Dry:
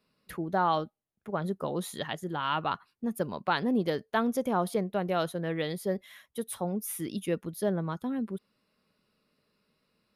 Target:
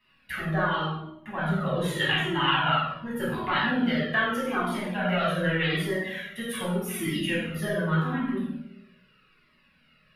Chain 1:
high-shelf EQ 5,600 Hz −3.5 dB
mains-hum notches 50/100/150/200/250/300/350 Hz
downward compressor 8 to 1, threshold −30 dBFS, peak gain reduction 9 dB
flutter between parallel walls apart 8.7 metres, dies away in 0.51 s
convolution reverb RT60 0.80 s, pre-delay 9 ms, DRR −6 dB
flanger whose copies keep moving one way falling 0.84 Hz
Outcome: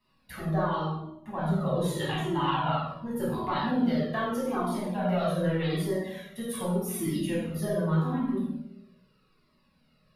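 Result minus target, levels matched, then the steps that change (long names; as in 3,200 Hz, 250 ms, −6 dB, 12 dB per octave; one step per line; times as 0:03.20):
2,000 Hz band −9.5 dB
add after downward compressor: flat-topped bell 2,100 Hz +12 dB 1.5 octaves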